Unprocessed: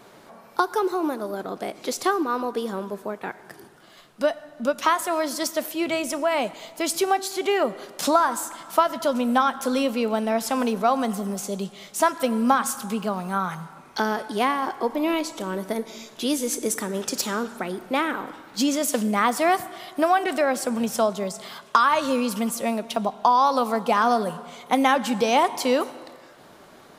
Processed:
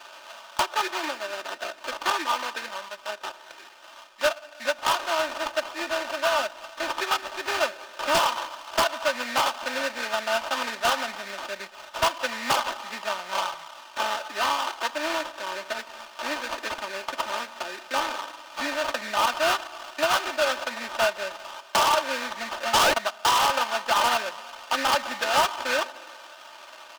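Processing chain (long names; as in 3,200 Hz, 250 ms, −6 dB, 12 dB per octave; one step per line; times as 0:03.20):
0:02.68–0:03.09: parametric band 340 Hz −13 dB 0.9 octaves
0:22.73–0:22.94: sound drawn into the spectrogram rise 800–2,000 Hz −14 dBFS
sample-rate reduction 2,100 Hz, jitter 20%
three-way crossover with the lows and the highs turned down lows −23 dB, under 600 Hz, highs −13 dB, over 6,300 Hz
comb filter 3.3 ms, depth 67%
wave folding −13.5 dBFS
one half of a high-frequency compander encoder only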